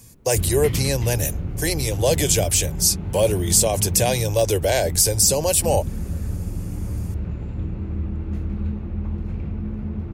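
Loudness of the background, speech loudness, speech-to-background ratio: -29.0 LUFS, -19.5 LUFS, 9.5 dB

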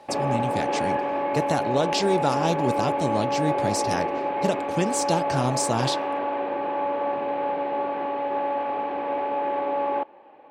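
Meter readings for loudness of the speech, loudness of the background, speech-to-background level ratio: -27.5 LUFS, -26.5 LUFS, -1.0 dB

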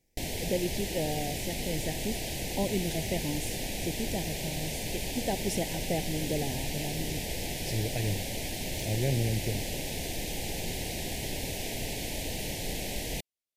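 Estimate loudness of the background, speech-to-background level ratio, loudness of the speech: -34.5 LUFS, -0.5 dB, -35.0 LUFS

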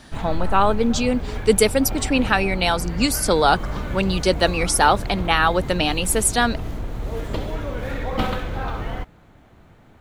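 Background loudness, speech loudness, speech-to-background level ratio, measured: -30.0 LUFS, -20.0 LUFS, 10.0 dB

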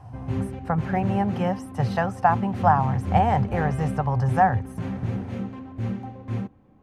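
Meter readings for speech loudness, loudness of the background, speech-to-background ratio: -24.5 LUFS, -31.0 LUFS, 6.5 dB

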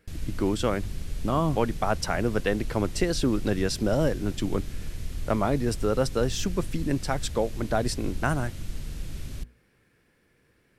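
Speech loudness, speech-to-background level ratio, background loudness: -28.0 LUFS, 10.5 dB, -38.5 LUFS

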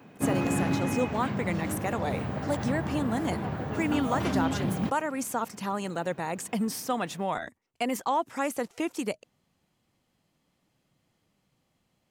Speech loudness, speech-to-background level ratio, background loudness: -32.0 LUFS, -1.0 dB, -31.0 LUFS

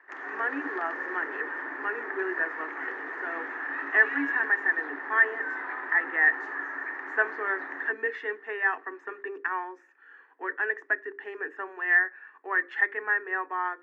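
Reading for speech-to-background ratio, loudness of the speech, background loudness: 6.5 dB, -28.0 LUFS, -34.5 LUFS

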